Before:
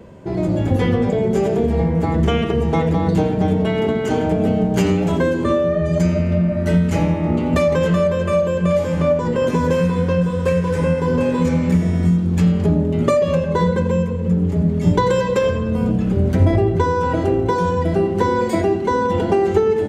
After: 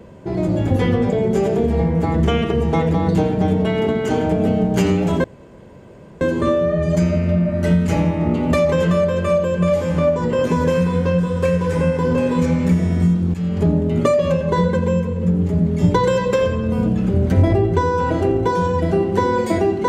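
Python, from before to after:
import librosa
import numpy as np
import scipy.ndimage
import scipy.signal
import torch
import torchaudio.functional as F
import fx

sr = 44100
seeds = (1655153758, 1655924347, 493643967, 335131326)

y = fx.edit(x, sr, fx.insert_room_tone(at_s=5.24, length_s=0.97),
    fx.fade_in_from(start_s=12.37, length_s=0.3, floor_db=-15.5), tone=tone)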